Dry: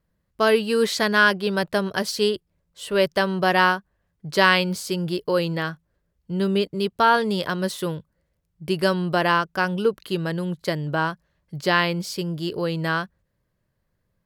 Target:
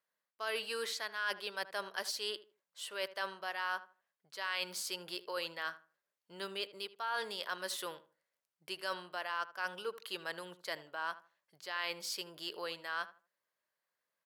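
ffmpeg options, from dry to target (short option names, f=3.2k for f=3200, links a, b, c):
-filter_complex "[0:a]highpass=830,areverse,acompressor=threshold=-29dB:ratio=6,areverse,asplit=2[a][b];[b]adelay=78,lowpass=f=1.7k:p=1,volume=-14.5dB,asplit=2[c][d];[d]adelay=78,lowpass=f=1.7k:p=1,volume=0.26,asplit=2[e][f];[f]adelay=78,lowpass=f=1.7k:p=1,volume=0.26[g];[a][c][e][g]amix=inputs=4:normalize=0,volume=-5.5dB"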